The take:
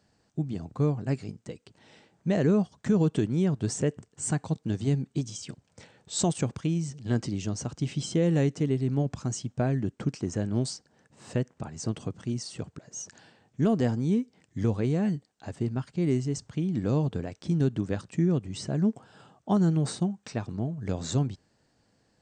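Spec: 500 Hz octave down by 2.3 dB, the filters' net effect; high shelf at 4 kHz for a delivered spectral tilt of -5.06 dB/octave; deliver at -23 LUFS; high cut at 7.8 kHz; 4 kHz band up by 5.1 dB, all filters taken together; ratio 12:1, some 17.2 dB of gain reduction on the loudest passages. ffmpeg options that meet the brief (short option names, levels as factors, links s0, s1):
-af "lowpass=7800,equalizer=f=500:t=o:g=-3,highshelf=f=4000:g=-3.5,equalizer=f=4000:t=o:g=9,acompressor=threshold=0.0126:ratio=12,volume=10.6"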